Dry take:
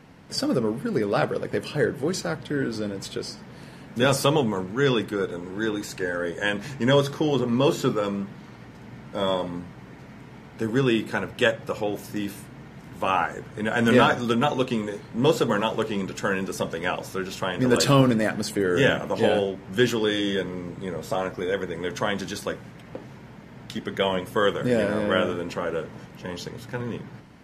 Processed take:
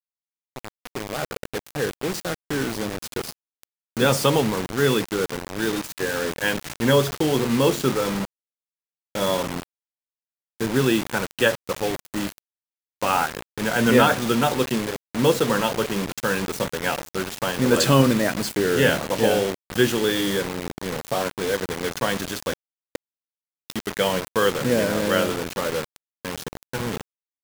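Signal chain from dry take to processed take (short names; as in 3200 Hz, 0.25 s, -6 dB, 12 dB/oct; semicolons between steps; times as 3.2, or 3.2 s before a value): opening faded in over 3.14 s; bit-crush 5-bit; gain +1.5 dB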